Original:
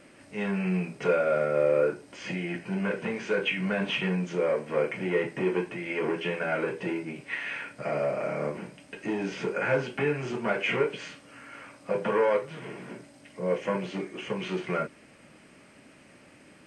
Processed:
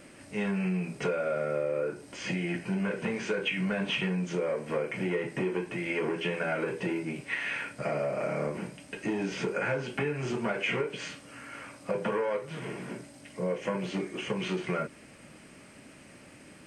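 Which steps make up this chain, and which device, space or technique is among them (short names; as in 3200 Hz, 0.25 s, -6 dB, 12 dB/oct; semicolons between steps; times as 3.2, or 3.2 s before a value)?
ASMR close-microphone chain (low shelf 170 Hz +5 dB; compressor, threshold -28 dBFS, peak gain reduction 9.5 dB; high shelf 7000 Hz +8 dB); gain +1 dB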